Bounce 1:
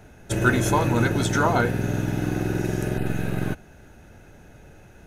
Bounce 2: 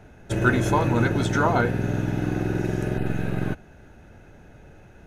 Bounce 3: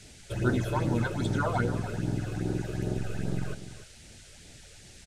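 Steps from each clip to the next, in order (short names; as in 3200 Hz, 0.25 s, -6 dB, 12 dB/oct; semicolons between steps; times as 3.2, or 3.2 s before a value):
high shelf 5600 Hz -11 dB
phaser stages 8, 2.5 Hz, lowest notch 230–2600 Hz; band noise 1600–9100 Hz -49 dBFS; echo 0.294 s -12.5 dB; gain -5.5 dB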